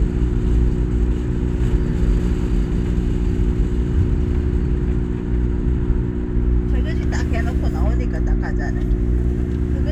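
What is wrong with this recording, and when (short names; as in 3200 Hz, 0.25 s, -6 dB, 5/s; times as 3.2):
hum 60 Hz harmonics 6 -23 dBFS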